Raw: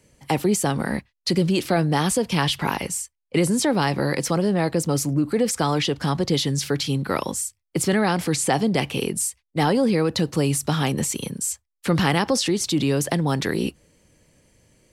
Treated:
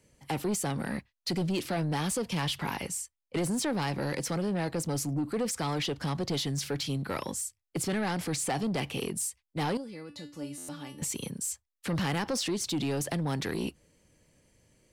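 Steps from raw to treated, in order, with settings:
0:09.77–0:11.02: tuned comb filter 290 Hz, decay 0.3 s, harmonics all, mix 90%
soft clipping −18 dBFS, distortion −13 dB
buffer that repeats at 0:10.57, samples 512, times 9
level −6.5 dB

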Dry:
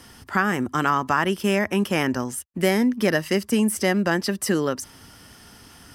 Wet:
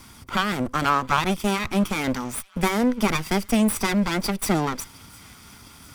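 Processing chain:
lower of the sound and its delayed copy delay 0.86 ms
delay with a high-pass on its return 707 ms, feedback 61%, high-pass 1,700 Hz, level −23.5 dB
level +2 dB

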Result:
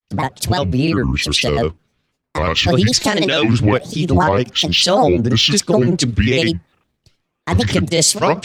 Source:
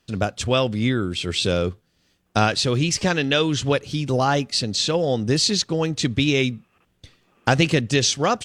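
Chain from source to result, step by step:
granular cloud, spray 34 ms, pitch spread up and down by 7 semitones
boost into a limiter +15.5 dB
multiband upward and downward expander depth 70%
level −4.5 dB

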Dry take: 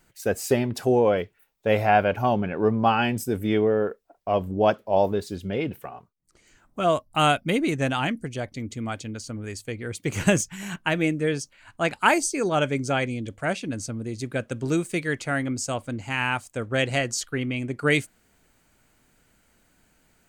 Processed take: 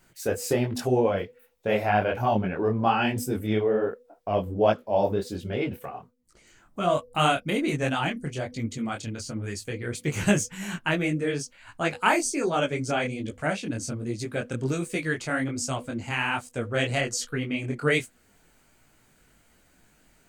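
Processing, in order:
hum removal 245.4 Hz, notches 2
in parallel at −1 dB: downward compressor, threshold −32 dBFS, peak gain reduction 17 dB
on the sum: micro pitch shift up and down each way 44 cents

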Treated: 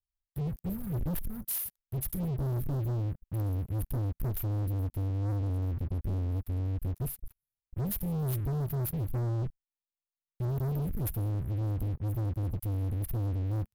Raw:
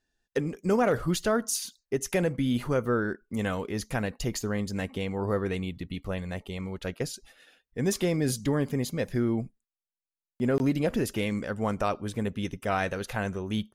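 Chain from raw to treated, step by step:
inverse Chebyshev band-stop filter 300–6,700 Hz, stop band 50 dB
leveller curve on the samples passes 5

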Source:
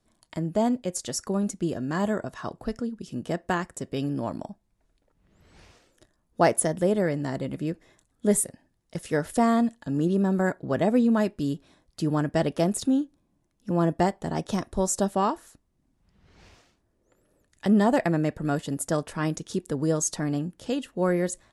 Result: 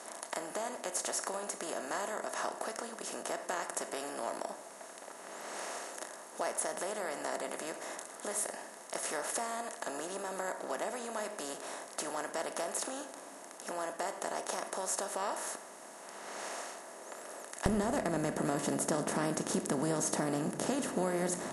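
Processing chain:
compressor on every frequency bin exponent 0.4
downward compressor, threshold −19 dBFS, peak gain reduction 8 dB
high-pass filter 610 Hz 12 dB per octave, from 0:17.66 130 Hz
convolution reverb RT60 1.6 s, pre-delay 3 ms, DRR 9 dB
level −9 dB

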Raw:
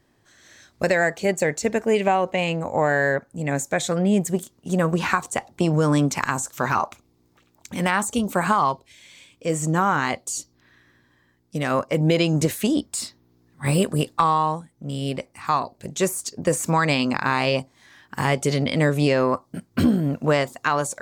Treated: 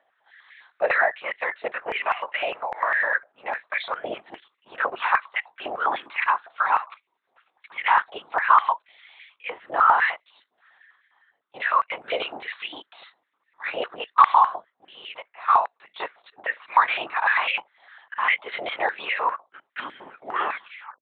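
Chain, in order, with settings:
turntable brake at the end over 0.95 s
linear-prediction vocoder at 8 kHz whisper
high-pass on a step sequencer 9.9 Hz 690–2,100 Hz
level −3 dB

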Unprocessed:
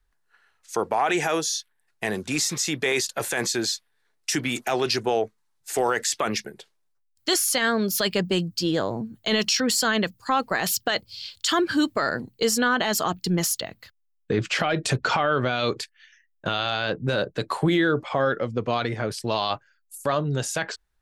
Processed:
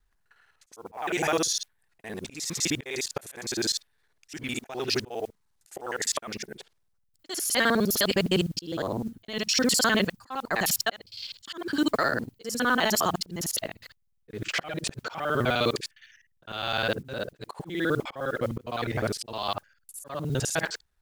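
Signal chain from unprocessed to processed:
reversed piece by piece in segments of 51 ms
noise that follows the level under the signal 28 dB
volume swells 376 ms

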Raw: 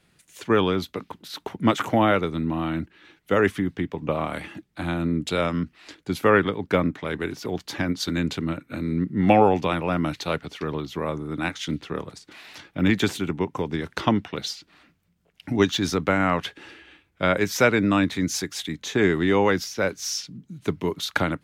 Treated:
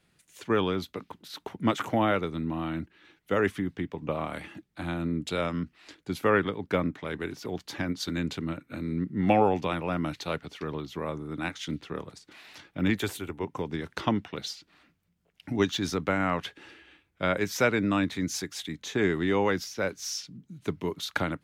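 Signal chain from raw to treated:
0:12.96–0:13.44: drawn EQ curve 110 Hz 0 dB, 160 Hz −11 dB, 460 Hz 0 dB, 6,000 Hz −3 dB, 11,000 Hz +7 dB
level −5.5 dB

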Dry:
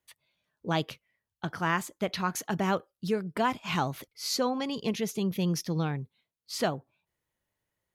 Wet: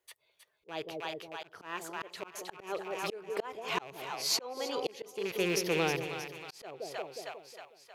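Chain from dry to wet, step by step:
loose part that buzzes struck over −32 dBFS, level −25 dBFS
low shelf with overshoot 300 Hz −9 dB, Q 3
echo with a time of its own for lows and highs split 710 Hz, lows 181 ms, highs 315 ms, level −8.5 dB
volume swells 538 ms
level +1.5 dB

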